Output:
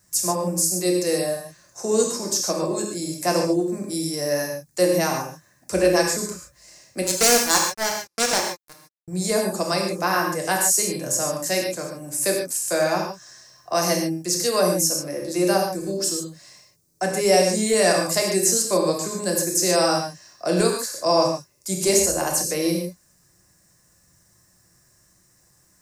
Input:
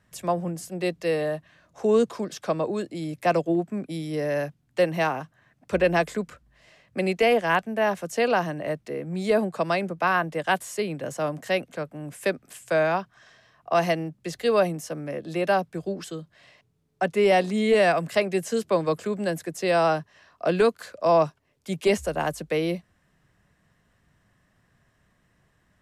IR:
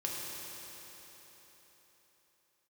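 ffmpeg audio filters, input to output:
-filter_complex "[0:a]asettb=1/sr,asplit=3[link_01][link_02][link_03];[link_01]atrim=end=7.024[link_04];[link_02]atrim=start=7.02:end=9.08,asetpts=PTS-STARTPTS,afade=type=in:duration=0.004:curve=qsin,afade=type=out:start_time=2.056:duration=0.004:curve=qsin,acrusher=bits=2:mix=0:aa=0.5[link_05];[link_03]atrim=start=9.076[link_06];[link_04][link_05]acrossfade=duration=0.004:curve1=hsin:curve2=qsin[link_07];[link_07][link_06]acrossfade=duration=0.004:curve1=qsin:curve2=hsin,equalizer=frequency=12000:width_type=o:width=1.4:gain=-9.5,aexciter=amount=9.4:drive=9.3:freq=4900[link_08];[1:a]atrim=start_sample=2205,afade=type=out:start_time=0.2:duration=0.01,atrim=end_sample=9261[link_09];[link_08][link_09]afir=irnorm=-1:irlink=0"

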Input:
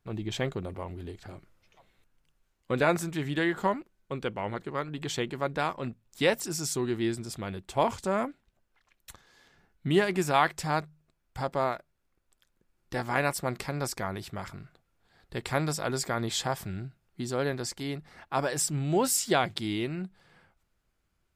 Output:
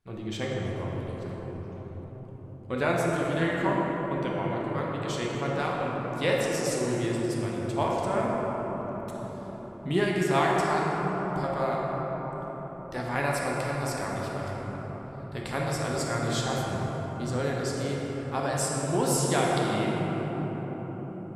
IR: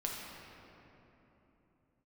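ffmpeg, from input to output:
-filter_complex "[0:a]bandreject=frequency=7100:width=25[link_01];[1:a]atrim=start_sample=2205,asetrate=23373,aresample=44100[link_02];[link_01][link_02]afir=irnorm=-1:irlink=0,volume=-5dB"

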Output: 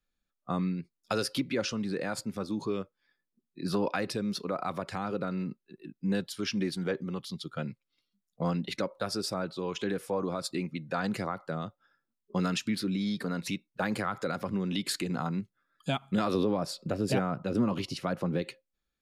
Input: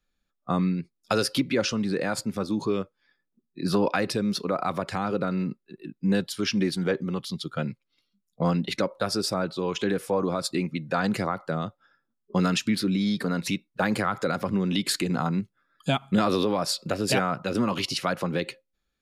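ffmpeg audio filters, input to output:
ffmpeg -i in.wav -filter_complex "[0:a]asettb=1/sr,asplit=3[link_01][link_02][link_03];[link_01]atrim=end=16.344[link_04];[link_02]atrim=start=16.34:end=18.42,asetpts=PTS-STARTPTS,afade=type=in:duration=0.004:curve=qsin,afade=type=out:start_time=2.076:duration=0.004:curve=qsin,tiltshelf=frequency=750:gain=5.5[link_05];[link_03]atrim=start=18.416[link_06];[link_04][link_05]acrossfade=duration=0.004:curve1=hsin:curve2=qsin[link_07];[link_07][link_06]acrossfade=duration=0.004:curve1=qsin:curve2=hsin,volume=-6dB" out.wav

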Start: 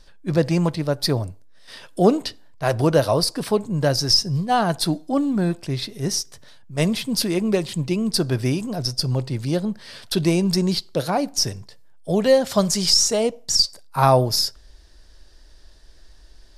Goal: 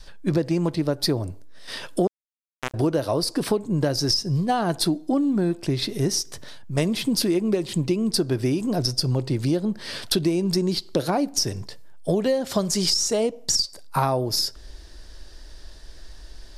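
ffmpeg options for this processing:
ffmpeg -i in.wav -filter_complex "[0:a]adynamicequalizer=threshold=0.0178:dfrequency=330:dqfactor=1.9:tfrequency=330:tqfactor=1.9:attack=5:release=100:ratio=0.375:range=4:mode=boostabove:tftype=bell,acompressor=threshold=-26dB:ratio=8,asettb=1/sr,asplit=3[link_01][link_02][link_03];[link_01]atrim=end=2.074[link_04];[link_02]atrim=start=2.07:end=2.74,asetpts=PTS-STARTPTS,afade=type=in:duration=0.004:curve=qsin,afade=type=out:start_time=0.666:duration=0.004:curve=qsin,acrusher=bits=2:mix=0:aa=0.5[link_05];[link_03]atrim=start=2.736[link_06];[link_04][link_05]acrossfade=duration=0.004:curve1=hsin:curve2=qsin[link_07];[link_07][link_06]acrossfade=duration=0.004:curve1=qsin:curve2=hsin,volume=6.5dB" out.wav

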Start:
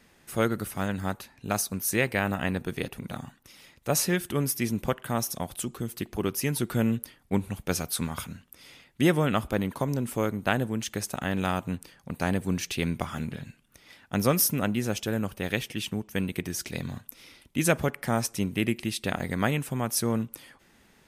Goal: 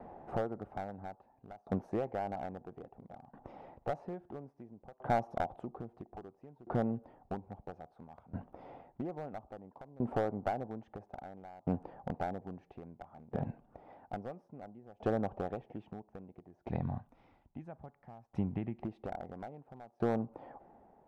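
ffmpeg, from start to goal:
ffmpeg -i in.wav -af "asetnsamples=nb_out_samples=441:pad=0,asendcmd='16.69 equalizer g -10;18.82 equalizer g 5',equalizer=frequency=490:width=0.61:gain=4,acompressor=threshold=-34dB:ratio=12,lowpass=frequency=770:width_type=q:width=4.9,aeval=exprs='clip(val(0),-1,0.0398)':channel_layout=same,aeval=exprs='val(0)*pow(10,-26*if(lt(mod(0.6*n/s,1),2*abs(0.6)/1000),1-mod(0.6*n/s,1)/(2*abs(0.6)/1000),(mod(0.6*n/s,1)-2*abs(0.6)/1000)/(1-2*abs(0.6)/1000))/20)':channel_layout=same,volume=6.5dB" out.wav

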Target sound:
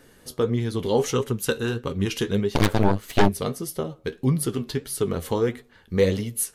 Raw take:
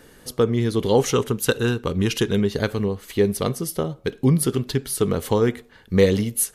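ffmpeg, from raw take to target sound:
ffmpeg -i in.wav -filter_complex "[0:a]flanger=delay=7.2:depth=6:regen=52:speed=1.6:shape=sinusoidal,asplit=3[link_01][link_02][link_03];[link_01]afade=type=out:start_time=2.53:duration=0.02[link_04];[link_02]aeval=exprs='0.316*(cos(1*acos(clip(val(0)/0.316,-1,1)))-cos(1*PI/2))+0.0316*(cos(5*acos(clip(val(0)/0.316,-1,1)))-cos(5*PI/2))+0.158*(cos(8*acos(clip(val(0)/0.316,-1,1)))-cos(8*PI/2))':channel_layout=same,afade=type=in:start_time=2.53:duration=0.02,afade=type=out:start_time=3.27:duration=0.02[link_05];[link_03]afade=type=in:start_time=3.27:duration=0.02[link_06];[link_04][link_05][link_06]amix=inputs=3:normalize=0" out.wav

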